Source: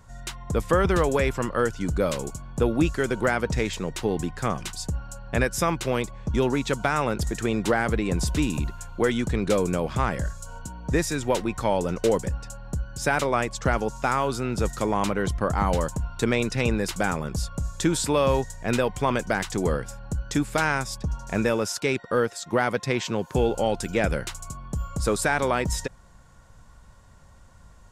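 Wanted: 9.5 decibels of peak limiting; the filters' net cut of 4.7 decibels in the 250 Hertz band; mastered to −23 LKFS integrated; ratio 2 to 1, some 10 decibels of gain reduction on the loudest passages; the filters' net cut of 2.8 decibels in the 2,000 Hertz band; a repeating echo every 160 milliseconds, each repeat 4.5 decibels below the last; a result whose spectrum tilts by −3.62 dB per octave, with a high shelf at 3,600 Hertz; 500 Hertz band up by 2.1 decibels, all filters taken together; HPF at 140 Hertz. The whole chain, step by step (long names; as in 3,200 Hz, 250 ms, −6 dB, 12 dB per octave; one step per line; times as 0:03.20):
high-pass filter 140 Hz
parametric band 250 Hz −7.5 dB
parametric band 500 Hz +4.5 dB
parametric band 2,000 Hz −5.5 dB
high-shelf EQ 3,600 Hz +5 dB
downward compressor 2 to 1, threshold −35 dBFS
brickwall limiter −25.5 dBFS
repeating echo 160 ms, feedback 60%, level −4.5 dB
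level +12 dB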